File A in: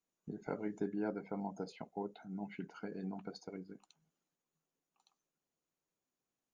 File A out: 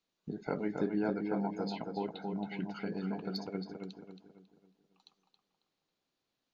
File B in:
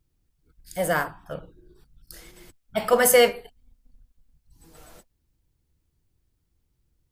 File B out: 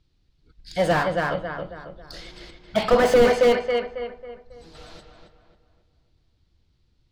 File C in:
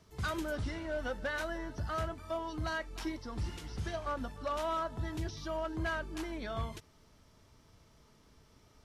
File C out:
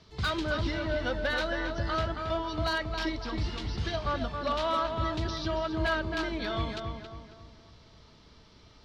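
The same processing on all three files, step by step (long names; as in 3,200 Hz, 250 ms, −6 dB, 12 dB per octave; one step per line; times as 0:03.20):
low-pass with resonance 4,200 Hz, resonance Q 2.6
feedback echo with a low-pass in the loop 273 ms, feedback 42%, low-pass 2,500 Hz, level −4.5 dB
slew-rate limiting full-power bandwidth 82 Hz
level +4.5 dB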